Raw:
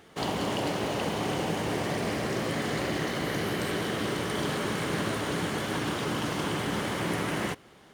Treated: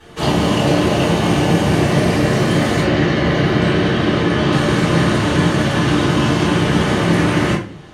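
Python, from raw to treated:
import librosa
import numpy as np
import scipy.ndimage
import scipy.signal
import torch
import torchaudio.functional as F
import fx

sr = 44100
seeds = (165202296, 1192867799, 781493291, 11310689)

y = fx.lowpass(x, sr, hz=fx.steps((0.0, 12000.0), (2.81, 4400.0), (4.52, 8200.0)), slope=12)
y = fx.room_shoebox(y, sr, seeds[0], volume_m3=33.0, walls='mixed', distance_m=2.8)
y = F.gain(torch.from_numpy(y), -1.0).numpy()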